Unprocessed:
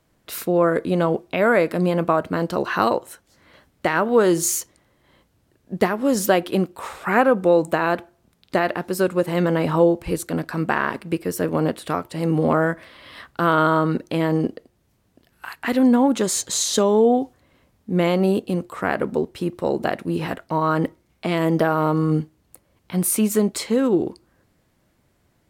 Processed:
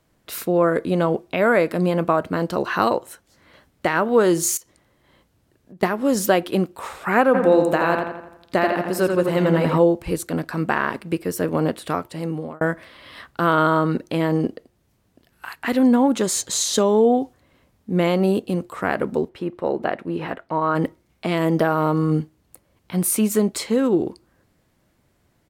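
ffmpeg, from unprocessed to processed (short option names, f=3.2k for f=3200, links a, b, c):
-filter_complex "[0:a]asettb=1/sr,asplit=3[a][b][c];[a]atrim=end=4.574[d];[b]atrim=start=4.57:end=5.83,asetpts=PTS-STARTPTS,afade=t=in:d=0.004:c=qsin,afade=t=out:st=1.256:d=0.004:c=qsin,acompressor=threshold=-41dB:ratio=6:attack=3.2:release=140:knee=1:detection=peak[e];[c]atrim=start=5.826[f];[d][e]acrossfade=d=0.004:c1=hsin:c2=qsin[g];[g][f]acrossfade=d=0.004:c1=qsin:c2=hsin,asplit=3[h][i][j];[h]afade=t=out:st=7.33:d=0.02[k];[i]asplit=2[l][m];[m]adelay=84,lowpass=f=4.4k:p=1,volume=-4.5dB,asplit=2[n][o];[o]adelay=84,lowpass=f=4.4k:p=1,volume=0.51,asplit=2[p][q];[q]adelay=84,lowpass=f=4.4k:p=1,volume=0.51,asplit=2[r][s];[s]adelay=84,lowpass=f=4.4k:p=1,volume=0.51,asplit=2[t][u];[u]adelay=84,lowpass=f=4.4k:p=1,volume=0.51,asplit=2[v][w];[w]adelay=84,lowpass=f=4.4k:p=1,volume=0.51,asplit=2[x][y];[y]adelay=84,lowpass=f=4.4k:p=1,volume=0.51[z];[l][n][p][r][t][v][x][z]amix=inputs=8:normalize=0,afade=t=in:st=7.33:d=0.02,afade=t=out:st=9.77:d=0.02[aa];[j]afade=t=in:st=9.77:d=0.02[ab];[k][aa][ab]amix=inputs=3:normalize=0,asplit=3[ac][ad][ae];[ac]afade=t=out:st=19.28:d=0.02[af];[ad]bass=f=250:g=-6,treble=f=4k:g=-15,afade=t=in:st=19.28:d=0.02,afade=t=out:st=20.74:d=0.02[ag];[ae]afade=t=in:st=20.74:d=0.02[ah];[af][ag][ah]amix=inputs=3:normalize=0,asplit=2[ai][aj];[ai]atrim=end=12.61,asetpts=PTS-STARTPTS,afade=t=out:st=12:d=0.61[ak];[aj]atrim=start=12.61,asetpts=PTS-STARTPTS,afade=t=in:d=0.004:c=hsin[al];[ak][al]concat=n=2:v=0:a=1"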